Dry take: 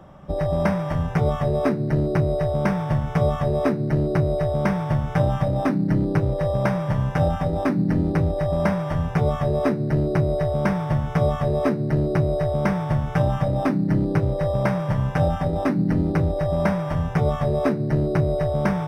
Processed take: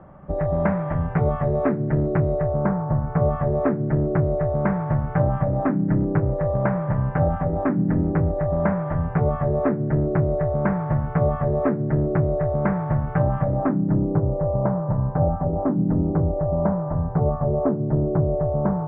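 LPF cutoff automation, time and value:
LPF 24 dB/oct
2.31 s 2000 Hz
2.87 s 1200 Hz
3.34 s 1800 Hz
13.49 s 1800 Hz
14.07 s 1100 Hz

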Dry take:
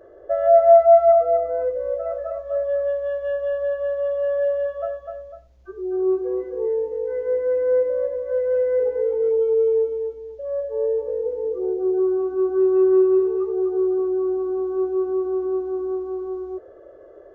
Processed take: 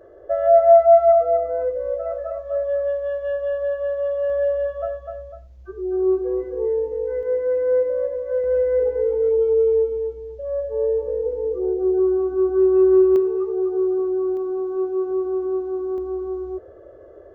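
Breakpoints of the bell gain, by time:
bell 74 Hz 2.3 oct
+3.5 dB
from 4.3 s +10.5 dB
from 7.23 s +2.5 dB
from 8.44 s +12 dB
from 13.16 s +0.5 dB
from 14.37 s -5.5 dB
from 15.11 s +1 dB
from 15.98 s +10.5 dB

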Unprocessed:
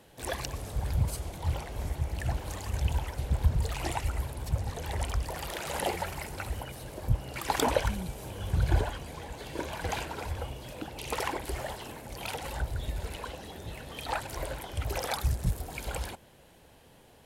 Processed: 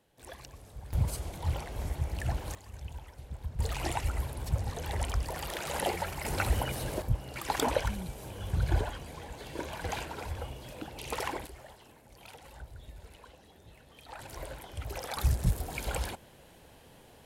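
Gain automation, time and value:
-13 dB
from 0.93 s -1 dB
from 2.55 s -13.5 dB
from 3.59 s -0.5 dB
from 6.25 s +7 dB
from 7.02 s -2.5 dB
from 11.47 s -14 dB
from 14.19 s -6 dB
from 15.17 s +1.5 dB

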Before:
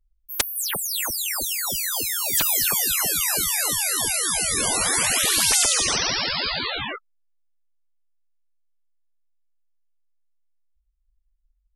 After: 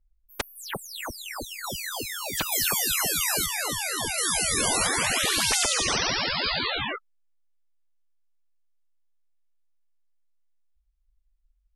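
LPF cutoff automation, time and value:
LPF 6 dB/oct
1400 Hz
from 1.64 s 2600 Hz
from 2.52 s 7000 Hz
from 3.46 s 3200 Hz
from 4.18 s 8300 Hz
from 4.87 s 3900 Hz
from 6.44 s 7100 Hz

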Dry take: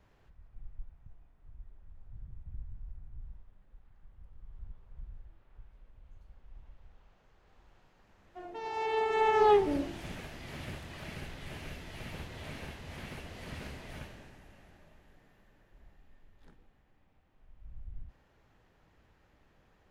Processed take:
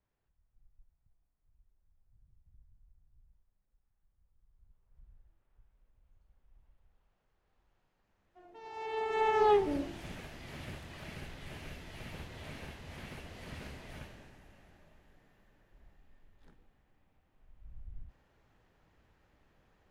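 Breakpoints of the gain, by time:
4.63 s -19.5 dB
5.08 s -12.5 dB
8.42 s -12.5 dB
9.2 s -2.5 dB

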